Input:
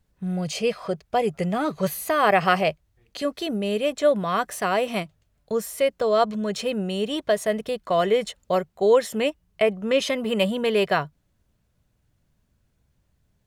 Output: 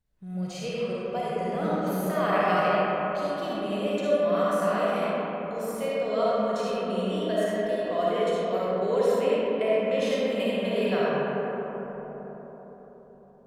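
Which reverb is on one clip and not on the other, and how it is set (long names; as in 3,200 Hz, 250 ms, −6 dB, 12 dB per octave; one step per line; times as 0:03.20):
comb and all-pass reverb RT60 4.7 s, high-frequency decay 0.3×, pre-delay 15 ms, DRR −8.5 dB
level −13 dB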